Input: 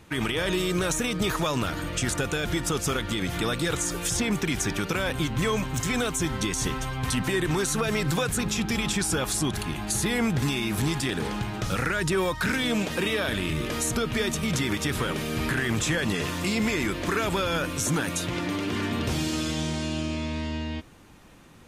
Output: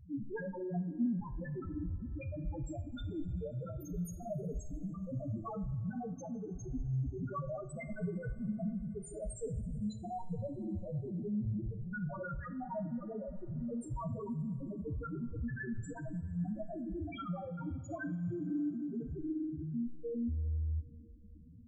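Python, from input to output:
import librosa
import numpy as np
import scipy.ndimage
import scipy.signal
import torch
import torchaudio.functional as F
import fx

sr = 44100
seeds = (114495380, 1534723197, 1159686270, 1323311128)

y = fx.formant_cascade(x, sr, vowel='i', at=(0.76, 1.2))
y = fx.over_compress(y, sr, threshold_db=-29.0, ratio=-0.5, at=(15.26, 15.74))
y = 10.0 ** (-28.5 / 20.0) * (np.abs((y / 10.0 ** (-28.5 / 20.0) + 3.0) % 4.0 - 2.0) - 1.0)
y = fx.cheby_ripple_highpass(y, sr, hz=160.0, ripple_db=3, at=(5.9, 6.53), fade=0.02)
y = fx.spec_topn(y, sr, count=1)
y = fx.rev_double_slope(y, sr, seeds[0], early_s=0.42, late_s=3.6, knee_db=-18, drr_db=7.0)
y = y * 10.0 ** (7.5 / 20.0)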